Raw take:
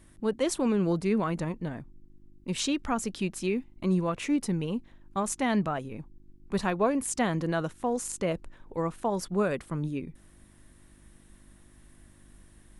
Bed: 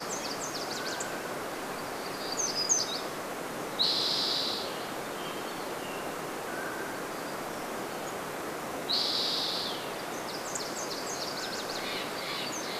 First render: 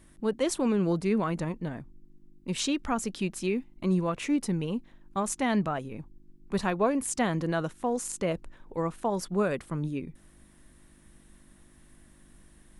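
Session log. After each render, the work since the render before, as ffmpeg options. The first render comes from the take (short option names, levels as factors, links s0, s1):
-af "bandreject=f=50:t=h:w=4,bandreject=f=100:t=h:w=4"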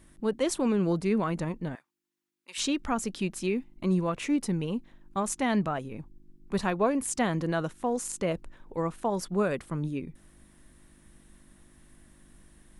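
-filter_complex "[0:a]asettb=1/sr,asplit=3[s0][s1][s2];[s0]atrim=end=1.754[s3];[s1]atrim=start=1.75:end=2.58,asetpts=PTS-STARTPTS,afade=t=in:d=0.004:c=qsin,afade=t=out:st=0.826:d=0.004:c=qsin,highpass=1300[s4];[s2]atrim=start=2.576[s5];[s3][s4]acrossfade=d=0.004:c1=hsin:c2=qsin[s6];[s6][s5]acrossfade=d=0.004:c1=qsin:c2=hsin"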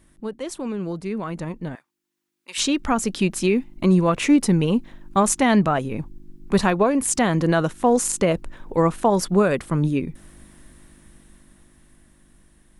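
-af "alimiter=limit=0.1:level=0:latency=1:release=409,dynaudnorm=f=380:g=13:m=3.98"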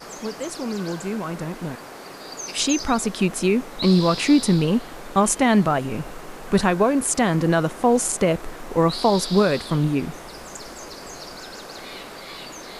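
-filter_complex "[1:a]volume=0.75[s0];[0:a][s0]amix=inputs=2:normalize=0"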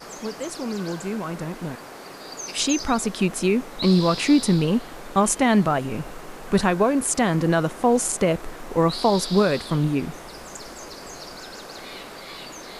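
-af "volume=0.891"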